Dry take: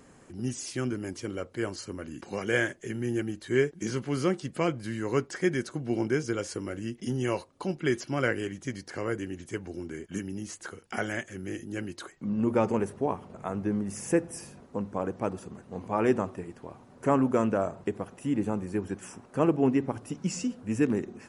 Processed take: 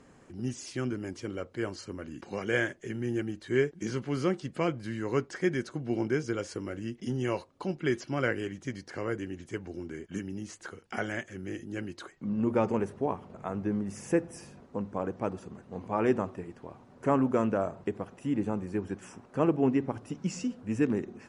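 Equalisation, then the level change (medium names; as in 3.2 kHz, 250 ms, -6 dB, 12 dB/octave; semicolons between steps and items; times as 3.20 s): distance through air 54 m; -1.5 dB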